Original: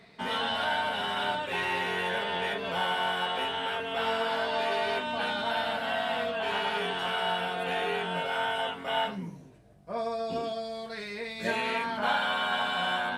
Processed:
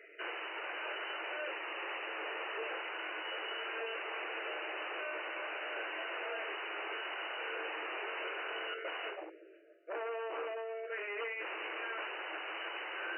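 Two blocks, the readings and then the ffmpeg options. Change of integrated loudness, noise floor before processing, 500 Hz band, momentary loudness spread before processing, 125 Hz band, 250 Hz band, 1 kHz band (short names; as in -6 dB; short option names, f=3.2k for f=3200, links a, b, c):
-9.5 dB, -47 dBFS, -10.0 dB, 5 LU, under -40 dB, -14.5 dB, -13.0 dB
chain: -af "asuperstop=centerf=910:order=12:qfactor=1.4,aeval=exprs='0.0168*(abs(mod(val(0)/0.0168+3,4)-2)-1)':c=same,bandreject=f=60:t=h:w=6,bandreject=f=120:t=h:w=6,bandreject=f=180:t=h:w=6,bandreject=f=240:t=h:w=6,bandreject=f=300:t=h:w=6,bandreject=f=360:t=h:w=6,bandreject=f=420:t=h:w=6,afftfilt=real='re*between(b*sr/4096,310,3000)':imag='im*between(b*sr/4096,310,3000)':win_size=4096:overlap=0.75,volume=2.5dB"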